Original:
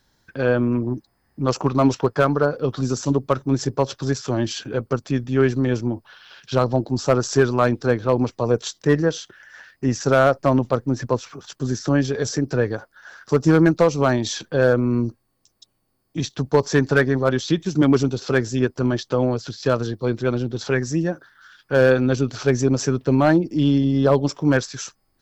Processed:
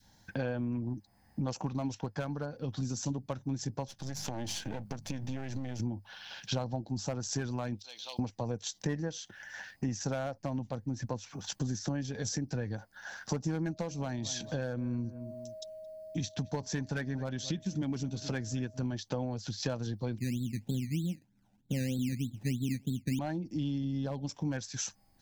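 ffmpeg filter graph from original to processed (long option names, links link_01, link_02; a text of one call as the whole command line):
ffmpeg -i in.wav -filter_complex "[0:a]asettb=1/sr,asplit=3[link_01][link_02][link_03];[link_01]atrim=end=3.884[link_04];[link_02]atrim=start=3.88:end=5.8,asetpts=PTS-STARTPTS,afade=type=in:duration=0.004:curve=qsin,afade=type=out:start_time=1.916:duration=0.004:curve=qsin,aeval=exprs='if(lt(val(0),0),0.251*val(0),val(0))':channel_layout=same,bandreject=frequency=50:width_type=h:width=6,bandreject=frequency=100:width_type=h:width=6,bandreject=frequency=150:width_type=h:width=6,bandreject=frequency=200:width_type=h:width=6,acompressor=threshold=-29dB:ratio=6:attack=3.2:release=140:knee=1:detection=peak[link_05];[link_03]atrim=start=5.796[link_06];[link_04][link_05]acrossfade=duration=0.004:curve1=hsin:curve2=qsin[link_07];[link_07][link_06]acrossfade=duration=0.004:curve1=qsin:curve2=hsin,asettb=1/sr,asplit=3[link_08][link_09][link_10];[link_08]atrim=end=7.794[link_11];[link_09]atrim=start=7.79:end=8.19,asetpts=PTS-STARTPTS,afade=type=in:duration=0.004:curve=qsin,afade=type=out:start_time=0.396:duration=0.004:curve=qsin,highpass=1100,highshelf=frequency=2400:width_type=q:width=3:gain=13,acompressor=threshold=-44dB:ratio=3:attack=3.2:release=140:knee=1:detection=peak[link_12];[link_10]atrim=start=8.186[link_13];[link_11][link_12]acrossfade=duration=0.004:curve1=hsin:curve2=qsin[link_14];[link_14][link_13]acrossfade=duration=0.004:curve1=qsin:curve2=hsin,asettb=1/sr,asplit=3[link_15][link_16][link_17];[link_15]atrim=end=13.674[link_18];[link_16]atrim=start=13.67:end=18.81,asetpts=PTS-STARTPTS,afade=type=in:duration=0.004:curve=qsin,afade=type=out:start_time=5.136:duration=0.004:curve=qsin,aeval=exprs='val(0)+0.0112*sin(2*PI*630*n/s)':channel_layout=same,asplit=2[link_19][link_20];[link_20]adelay=221,lowpass=frequency=1700:poles=1,volume=-18.5dB,asplit=2[link_21][link_22];[link_22]adelay=221,lowpass=frequency=1700:poles=1,volume=0.28[link_23];[link_19][link_21][link_23]amix=inputs=3:normalize=0,atrim=end_sample=226674[link_24];[link_17]atrim=start=18.806[link_25];[link_18][link_24]acrossfade=duration=0.004:curve1=hsin:curve2=qsin[link_26];[link_26][link_25]acrossfade=duration=0.004:curve1=qsin:curve2=hsin,asettb=1/sr,asplit=3[link_27][link_28][link_29];[link_27]atrim=end=20.184[link_30];[link_28]atrim=start=20.18:end=23.19,asetpts=PTS-STARTPTS,afade=type=in:duration=0.004:curve=qsin,afade=type=out:start_time=3.006:duration=0.004:curve=qsin,lowpass=frequency=240:width_type=q:width=1.8,acrusher=samples=16:mix=1:aa=0.000001:lfo=1:lforange=9.6:lforate=3.2[link_31];[link_29]atrim=start=23.186[link_32];[link_30][link_31]acrossfade=duration=0.004:curve1=hsin:curve2=qsin[link_33];[link_33][link_32]acrossfade=duration=0.004:curve1=qsin:curve2=hsin,equalizer=frequency=100:width_type=o:width=0.33:gain=7,equalizer=frequency=200:width_type=o:width=0.33:gain=7,equalizer=frequency=400:width_type=o:width=0.33:gain=-9,equalizer=frequency=800:width_type=o:width=0.33:gain=7,equalizer=frequency=1250:width_type=o:width=0.33:gain=-10,equalizer=frequency=6300:width_type=o:width=0.33:gain=4,acompressor=threshold=-32dB:ratio=5,adynamicequalizer=threshold=0.00447:dfrequency=730:dqfactor=0.73:tfrequency=730:tqfactor=0.73:attack=5:release=100:ratio=0.375:range=3.5:mode=cutabove:tftype=bell" out.wav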